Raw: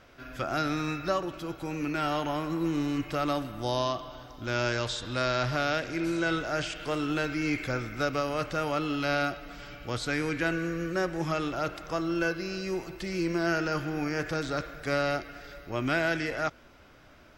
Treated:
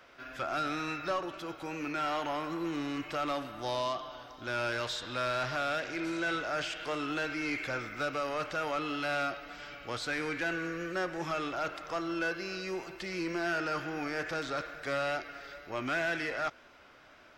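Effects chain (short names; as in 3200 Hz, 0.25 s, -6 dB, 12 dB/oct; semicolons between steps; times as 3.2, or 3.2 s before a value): overdrive pedal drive 15 dB, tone 4100 Hz, clips at -15 dBFS; wow and flutter 29 cents; gain -8 dB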